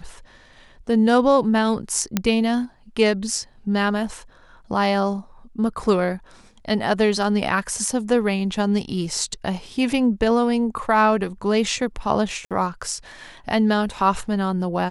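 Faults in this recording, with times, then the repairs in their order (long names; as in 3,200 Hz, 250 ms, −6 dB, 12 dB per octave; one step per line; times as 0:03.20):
0:02.17: click −5 dBFS
0:12.45–0:12.51: drop-out 57 ms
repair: click removal
repair the gap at 0:12.45, 57 ms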